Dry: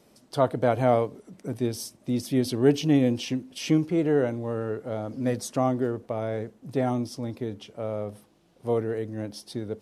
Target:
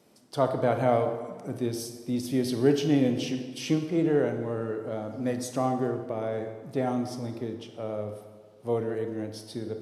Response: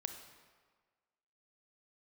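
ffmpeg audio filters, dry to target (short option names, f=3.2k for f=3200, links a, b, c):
-filter_complex "[0:a]highpass=92[a];[1:a]atrim=start_sample=2205[b];[a][b]afir=irnorm=-1:irlink=0"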